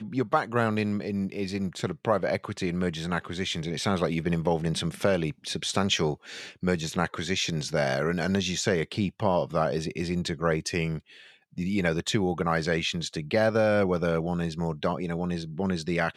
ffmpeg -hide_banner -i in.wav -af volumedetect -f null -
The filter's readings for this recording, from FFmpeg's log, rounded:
mean_volume: -27.7 dB
max_volume: -8.3 dB